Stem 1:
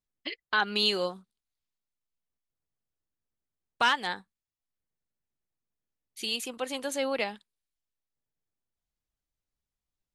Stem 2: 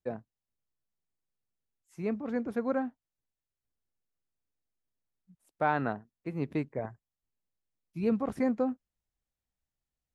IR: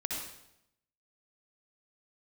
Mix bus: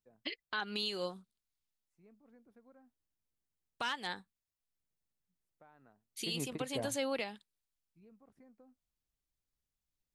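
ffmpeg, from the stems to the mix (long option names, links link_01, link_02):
-filter_complex "[0:a]equalizer=frequency=1000:width=0.41:gain=-4,volume=-0.5dB,asplit=2[link_01][link_02];[1:a]acompressor=threshold=-31dB:ratio=4,volume=0dB[link_03];[link_02]apad=whole_len=447395[link_04];[link_03][link_04]sidechaingate=range=-28dB:threshold=-42dB:ratio=16:detection=peak[link_05];[link_01][link_05]amix=inputs=2:normalize=0,alimiter=level_in=1.5dB:limit=-24dB:level=0:latency=1:release=311,volume=-1.5dB"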